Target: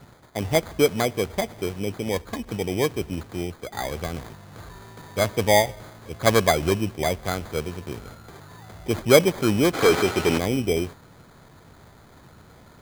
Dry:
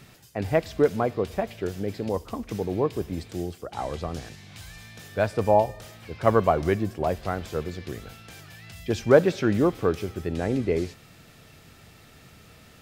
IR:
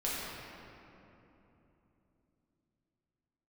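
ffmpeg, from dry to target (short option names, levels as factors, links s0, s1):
-filter_complex "[0:a]acrusher=samples=16:mix=1:aa=0.000001,asplit=3[s0][s1][s2];[s0]afade=t=out:st=9.73:d=0.02[s3];[s1]asplit=2[s4][s5];[s5]highpass=f=720:p=1,volume=17.8,asoftclip=type=tanh:threshold=0.335[s6];[s4][s6]amix=inputs=2:normalize=0,lowpass=f=7200:p=1,volume=0.501,afade=t=in:st=9.73:d=0.02,afade=t=out:st=10.37:d=0.02[s7];[s2]afade=t=in:st=10.37:d=0.02[s8];[s3][s7][s8]amix=inputs=3:normalize=0,volume=1.19"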